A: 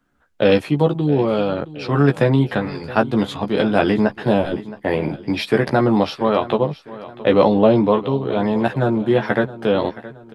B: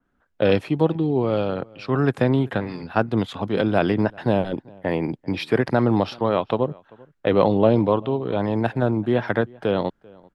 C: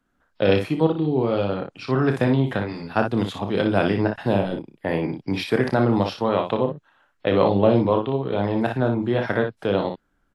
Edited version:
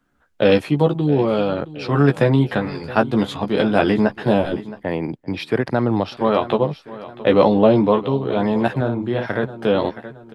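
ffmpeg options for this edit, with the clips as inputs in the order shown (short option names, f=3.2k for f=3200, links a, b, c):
-filter_complex "[0:a]asplit=3[a][b][c];[a]atrim=end=4.832[d];[1:a]atrim=start=4.828:end=6.172[e];[b]atrim=start=6.168:end=8.812[f];[2:a]atrim=start=8.808:end=9.432[g];[c]atrim=start=9.428[h];[d][e]acrossfade=d=0.004:c1=hsin:c2=hsin[i];[i][f]acrossfade=d=0.004:c1=hsin:c2=hsin[j];[j][g]acrossfade=d=0.004:c1=hsin:c2=hsin[k];[k][h]acrossfade=d=0.004:c1=hsin:c2=hsin"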